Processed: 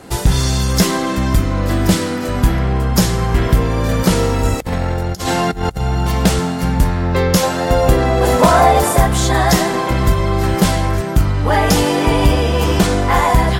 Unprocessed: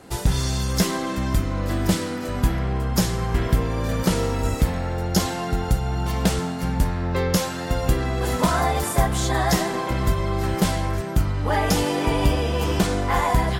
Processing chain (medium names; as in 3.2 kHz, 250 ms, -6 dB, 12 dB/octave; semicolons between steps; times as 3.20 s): 7.43–8.97 s: peaking EQ 620 Hz +7.5 dB 1.3 oct; saturation -8.5 dBFS, distortion -23 dB; 4.60–5.81 s: compressor with a negative ratio -27 dBFS, ratio -0.5; trim +8 dB